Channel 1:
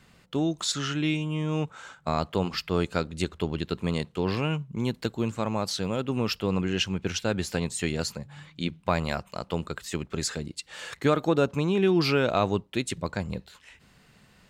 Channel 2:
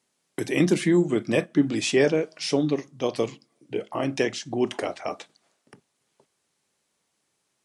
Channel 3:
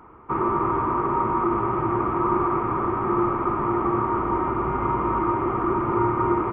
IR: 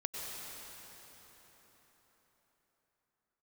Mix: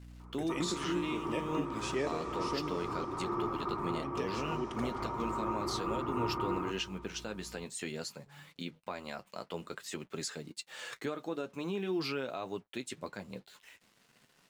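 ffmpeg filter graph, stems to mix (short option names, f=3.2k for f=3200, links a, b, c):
-filter_complex "[0:a]highpass=200,acrusher=bits=8:mix=0:aa=0.5,flanger=delay=7:depth=3.1:regen=-46:speed=0.48:shape=sinusoidal,volume=-1dB[a];[1:a]aeval=exprs='val(0)+0.0158*(sin(2*PI*60*n/s)+sin(2*PI*2*60*n/s)/2+sin(2*PI*3*60*n/s)/3+sin(2*PI*4*60*n/s)/4+sin(2*PI*5*60*n/s)/5)':c=same,volume=-15.5dB,asplit=3[b][c][d];[b]atrim=end=3.05,asetpts=PTS-STARTPTS,afade=t=out:st=3.046:d=0.004:c=hsin[e];[c]atrim=start=3.05:end=3.91,asetpts=PTS-STARTPTS,volume=0[f];[d]atrim=start=3.91,asetpts=PTS-STARTPTS,afade=t=in:d=0.004:c=hsin[g];[e][f][g]concat=n=3:v=0:a=1,asplit=3[h][i][j];[i]volume=-8dB[k];[2:a]adelay=200,volume=-14dB,asplit=2[l][m];[m]volume=-15dB[n];[j]apad=whole_len=296457[o];[l][o]sidechaincompress=threshold=-43dB:ratio=8:attack=16:release=221[p];[a][h]amix=inputs=2:normalize=0,alimiter=level_in=2dB:limit=-24dB:level=0:latency=1:release=415,volume=-2dB,volume=0dB[q];[3:a]atrim=start_sample=2205[r];[k][n]amix=inputs=2:normalize=0[s];[s][r]afir=irnorm=-1:irlink=0[t];[p][q][t]amix=inputs=3:normalize=0"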